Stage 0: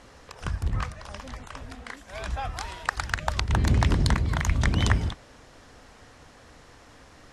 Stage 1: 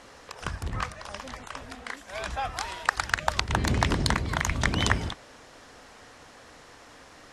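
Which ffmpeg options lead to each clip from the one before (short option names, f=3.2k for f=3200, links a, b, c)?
-af "lowshelf=f=180:g=-11,volume=3dB"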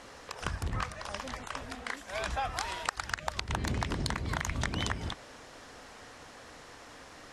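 -af "acompressor=threshold=-28dB:ratio=12"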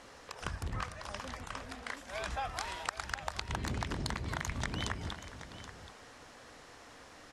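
-af "aecho=1:1:416|777:0.158|0.224,volume=-4dB"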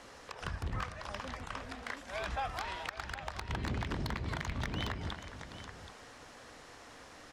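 -filter_complex "[0:a]acrossover=split=350|4900[a][b][c];[c]acompressor=threshold=-60dB:ratio=6[d];[a][b][d]amix=inputs=3:normalize=0,asoftclip=type=hard:threshold=-29dB,volume=1dB"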